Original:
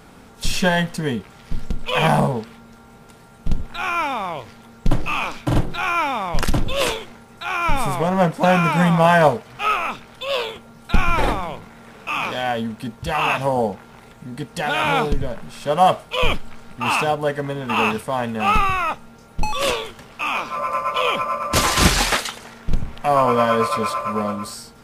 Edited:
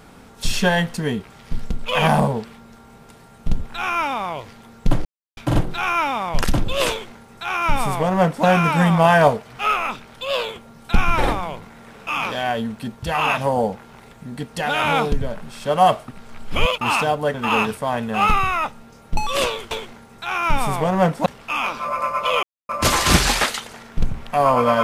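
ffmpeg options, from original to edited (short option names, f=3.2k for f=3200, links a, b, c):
-filter_complex "[0:a]asplit=10[a][b][c][d][e][f][g][h][i][j];[a]atrim=end=5.05,asetpts=PTS-STARTPTS,afade=t=out:st=5.046:d=0.004:c=hsin[k];[b]atrim=start=5.05:end=5.37,asetpts=PTS-STARTPTS,volume=0[l];[c]atrim=start=5.37:end=16.082,asetpts=PTS-STARTPTS,afade=t=in:d=0.004:c=hsin[m];[d]atrim=start=16.078:end=16.812,asetpts=PTS-STARTPTS,areverse[n];[e]atrim=start=16.808:end=17.342[o];[f]atrim=start=17.598:end=19.972[p];[g]atrim=start=6.898:end=8.452[q];[h]atrim=start=19.968:end=21.14,asetpts=PTS-STARTPTS,afade=t=out:st=1.168:d=0.004:c=hsin[r];[i]atrim=start=21.14:end=21.4,asetpts=PTS-STARTPTS,volume=0[s];[j]atrim=start=21.4,asetpts=PTS-STARTPTS,afade=t=in:d=0.004:c=hsin[t];[k][l][m]concat=n=3:v=0:a=1[u];[u][n]acrossfade=d=0.004:c1=hsin:c2=hsin[v];[v][o]acrossfade=d=0.004:c1=hsin:c2=hsin[w];[w][p]acrossfade=d=0.004:c1=hsin:c2=hsin[x];[x][q]acrossfade=d=0.004:c1=hsin:c2=hsin[y];[r][s][t]concat=n=3:v=0:a=1[z];[y][z]acrossfade=d=0.004:c1=hsin:c2=hsin"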